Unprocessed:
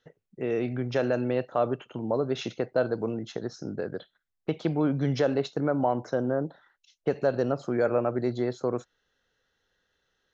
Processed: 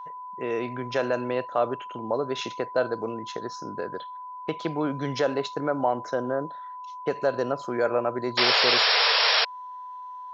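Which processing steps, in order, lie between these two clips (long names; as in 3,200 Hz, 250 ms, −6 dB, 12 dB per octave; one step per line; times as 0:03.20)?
steady tone 1,000 Hz −39 dBFS
low-shelf EQ 330 Hz −12 dB
sound drawn into the spectrogram noise, 0:08.37–0:09.45, 420–5,600 Hz −25 dBFS
level +4 dB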